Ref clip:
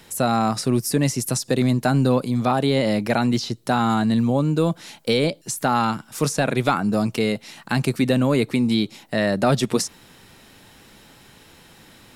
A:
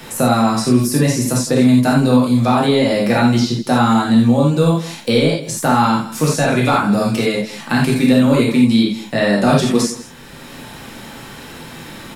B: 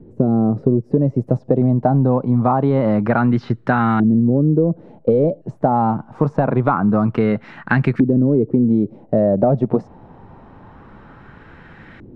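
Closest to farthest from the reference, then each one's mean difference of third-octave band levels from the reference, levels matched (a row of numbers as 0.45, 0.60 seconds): A, B; 5.5, 10.0 decibels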